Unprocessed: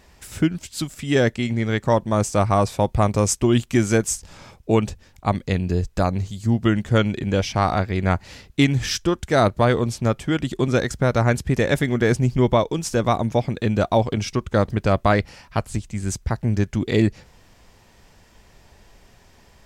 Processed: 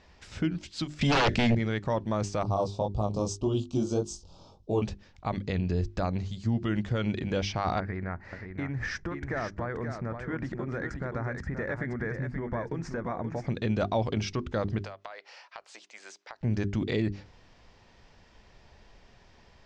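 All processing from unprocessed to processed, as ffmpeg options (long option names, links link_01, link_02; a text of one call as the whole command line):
ffmpeg -i in.wav -filter_complex "[0:a]asettb=1/sr,asplit=3[link_01][link_02][link_03];[link_01]atrim=end=1.014[link_04];[link_02]atrim=start=1.01:end=1.55,asetpts=PTS-STARTPTS,afade=type=in:duration=0.004:curve=qsin,afade=type=out:start_time=0.536:duration=0.004:curve=qsin,equalizer=frequency=1000:width=2.4:gain=-8.5,aeval=exprs='0.473*sin(PI/2*5.01*val(0)/0.473)':channel_layout=same[link_05];[link_03]atrim=start=1.546[link_06];[link_04][link_05]acrossfade=duration=0.004:curve1=hsin:curve2=qsin[link_07];[link_07][link_06]acrossfade=duration=0.004:curve1=qsin:curve2=hsin,asettb=1/sr,asplit=3[link_08][link_09][link_10];[link_08]atrim=end=2.434[link_11];[link_09]atrim=start=2.43:end=4.82,asetpts=PTS-STARTPTS,afade=type=in:duration=0.004:curve=qsin,afade=type=out:start_time=2.386:duration=0.004:curve=qsin,asuperstop=centerf=1900:order=4:qfactor=0.75,flanger=delay=19:depth=3.6:speed=1.8[link_12];[link_10]atrim=start=4.816[link_13];[link_11][link_12]acrossfade=duration=0.004:curve1=hsin:curve2=qsin[link_14];[link_14][link_13]acrossfade=duration=0.004:curve1=qsin:curve2=hsin,asettb=1/sr,asplit=3[link_15][link_16][link_17];[link_15]atrim=end=7.804[link_18];[link_16]atrim=start=7.8:end=13.47,asetpts=PTS-STARTPTS,afade=type=in:duration=0.004:curve=qsin,afade=type=out:start_time=5.666:duration=0.004:curve=qsin,highshelf=frequency=2400:width_type=q:width=3:gain=-9.5,acompressor=threshold=-23dB:ratio=16:attack=3.2:release=140:knee=1:detection=peak,aecho=1:1:528:0.447,atrim=end_sample=250047[link_19];[link_17]atrim=start=13.466[link_20];[link_18][link_19]acrossfade=duration=0.004:curve1=hsin:curve2=qsin[link_21];[link_21][link_20]acrossfade=duration=0.004:curve1=qsin:curve2=hsin,asettb=1/sr,asplit=3[link_22][link_23][link_24];[link_22]atrim=end=14.824[link_25];[link_23]atrim=start=14.82:end=16.41,asetpts=PTS-STARTPTS,afade=type=in:duration=0.004:curve=qsin,afade=type=out:start_time=1.586:duration=0.004:curve=qsin,highpass=frequency=550:width=0.5412,highpass=frequency=550:width=1.3066,acompressor=threshold=-34dB:ratio=12:attack=3.2:release=140:knee=1:detection=peak[link_26];[link_24]atrim=start=16.406[link_27];[link_25][link_26]acrossfade=duration=0.004:curve1=hsin:curve2=qsin[link_28];[link_28][link_27]acrossfade=duration=0.004:curve1=qsin:curve2=hsin,lowpass=frequency=5600:width=0.5412,lowpass=frequency=5600:width=1.3066,bandreject=frequency=50:width_type=h:width=6,bandreject=frequency=100:width_type=h:width=6,bandreject=frequency=150:width_type=h:width=6,bandreject=frequency=200:width_type=h:width=6,bandreject=frequency=250:width_type=h:width=6,bandreject=frequency=300:width_type=h:width=6,bandreject=frequency=350:width_type=h:width=6,bandreject=frequency=400:width_type=h:width=6,alimiter=limit=-13.5dB:level=0:latency=1:release=28,volume=-4.5dB" out.wav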